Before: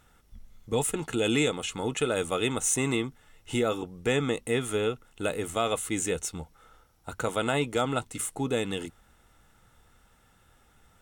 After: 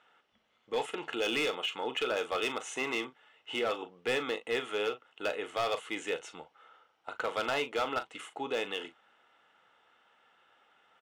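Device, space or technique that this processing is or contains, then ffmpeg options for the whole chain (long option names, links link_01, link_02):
megaphone: -filter_complex "[0:a]highpass=520,lowpass=2800,equalizer=frequency=3000:width_type=o:width=0.34:gain=7.5,asoftclip=type=hard:threshold=-25.5dB,asplit=2[link_01][link_02];[link_02]adelay=39,volume=-11.5dB[link_03];[link_01][link_03]amix=inputs=2:normalize=0"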